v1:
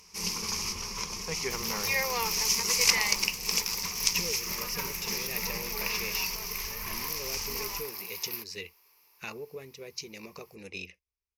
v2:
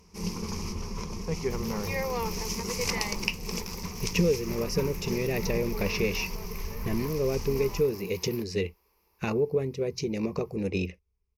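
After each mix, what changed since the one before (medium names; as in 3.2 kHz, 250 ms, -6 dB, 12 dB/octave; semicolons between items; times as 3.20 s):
speech +10.0 dB; master: add tilt shelf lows +10 dB, about 830 Hz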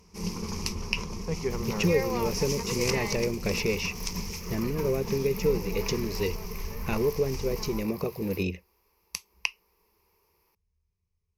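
speech: entry -2.35 s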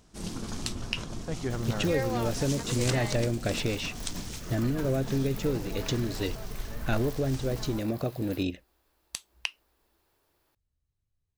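master: remove rippled EQ curve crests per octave 0.82, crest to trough 14 dB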